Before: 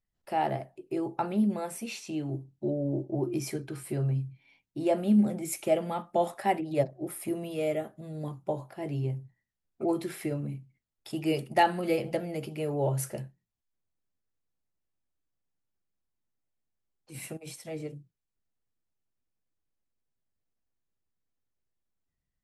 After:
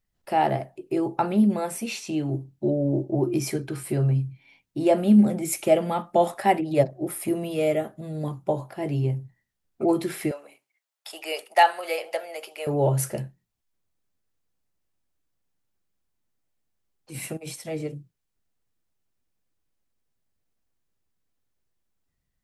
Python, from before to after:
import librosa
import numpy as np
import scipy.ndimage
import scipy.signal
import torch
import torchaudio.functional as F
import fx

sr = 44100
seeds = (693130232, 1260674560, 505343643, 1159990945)

y = fx.highpass(x, sr, hz=590.0, slope=24, at=(10.31, 12.67))
y = y * librosa.db_to_amplitude(6.5)